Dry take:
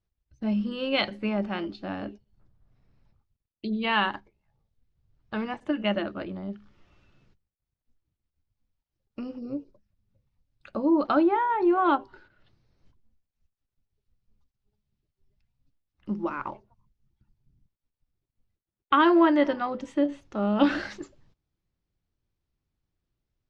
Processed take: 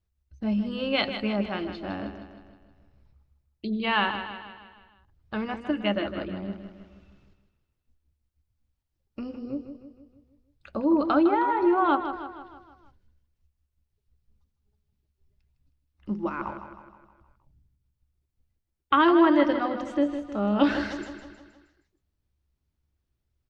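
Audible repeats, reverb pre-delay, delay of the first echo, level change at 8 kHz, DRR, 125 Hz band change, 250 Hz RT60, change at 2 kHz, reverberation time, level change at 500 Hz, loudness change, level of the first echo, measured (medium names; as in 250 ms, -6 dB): 5, no reverb, 157 ms, no reading, no reverb, no reading, no reverb, +0.5 dB, no reverb, +0.5 dB, +0.5 dB, -9.5 dB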